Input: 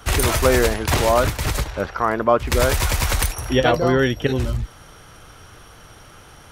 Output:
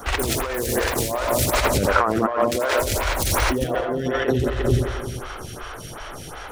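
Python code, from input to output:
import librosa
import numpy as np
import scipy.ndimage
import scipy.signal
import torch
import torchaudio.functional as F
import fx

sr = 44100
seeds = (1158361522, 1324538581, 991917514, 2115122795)

y = fx.self_delay(x, sr, depth_ms=0.051)
y = fx.highpass(y, sr, hz=fx.line((2.33, 120.0), (2.79, 320.0)), slope=12, at=(2.33, 2.79), fade=0.02)
y = fx.air_absorb(y, sr, metres=240.0, at=(3.49, 3.94))
y = fx.echo_heads(y, sr, ms=88, heads='first and second', feedback_pct=59, wet_db=-8.5)
y = fx.over_compress(y, sr, threshold_db=-24.0, ratio=-1.0)
y = fx.high_shelf(y, sr, hz=6500.0, db=11.0, at=(0.54, 1.66))
y = fx.stagger_phaser(y, sr, hz=2.7)
y = F.gain(torch.from_numpy(y), 5.5).numpy()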